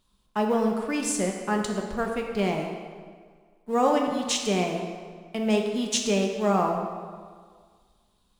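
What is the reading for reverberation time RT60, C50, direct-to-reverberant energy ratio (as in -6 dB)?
1.7 s, 3.5 dB, 1.5 dB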